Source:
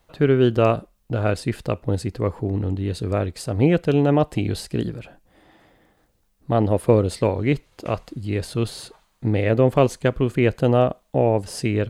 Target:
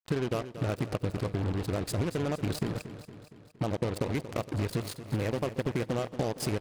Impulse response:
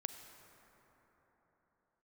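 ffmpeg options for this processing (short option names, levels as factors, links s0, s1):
-filter_complex "[0:a]acompressor=threshold=0.0355:ratio=16,atempo=1.8,acrusher=bits=5:mix=0:aa=0.5,aecho=1:1:232|464|696|928|1160|1392:0.237|0.135|0.077|0.0439|0.025|0.0143,asplit=2[s0][s1];[1:a]atrim=start_sample=2205,afade=t=out:st=0.15:d=0.01,atrim=end_sample=7056,asetrate=29988,aresample=44100[s2];[s1][s2]afir=irnorm=-1:irlink=0,volume=0.335[s3];[s0][s3]amix=inputs=2:normalize=0"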